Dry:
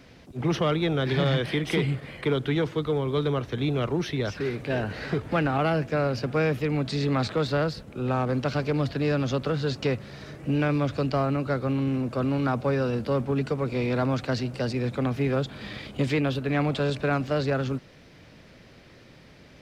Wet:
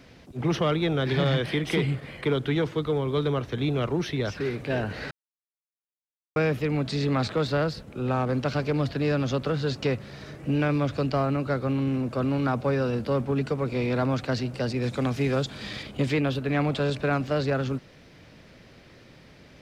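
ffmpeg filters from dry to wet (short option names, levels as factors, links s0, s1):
-filter_complex "[0:a]asettb=1/sr,asplit=3[s0][s1][s2];[s0]atrim=end=14.824[s3];[s1]atrim=start=14.82:end=15.83,asetpts=PTS-STARTPTS,afade=t=in:d=0.004:c=qsin,afade=t=out:st=1.006:d=0.004:c=qsin,equalizer=f=6800:t=o:w=1.7:g=9[s4];[s2]atrim=start=15.826[s5];[s3][s4]acrossfade=d=0.004:c1=hsin:c2=qsin[s6];[s6][s5]acrossfade=d=0.004:c1=qsin:c2=hsin,asplit=3[s7][s8][s9];[s7]atrim=end=5.11,asetpts=PTS-STARTPTS,afade=t=out:st=5.106:d=0.004:c=hsin[s10];[s8]atrim=start=5.11:end=6.36,asetpts=PTS-STARTPTS,volume=0[s11];[s9]atrim=start=6.36,asetpts=PTS-STARTPTS,afade=t=in:d=0.004:c=hsin[s12];[s10][s11][s12]concat=n=3:v=0:a=1"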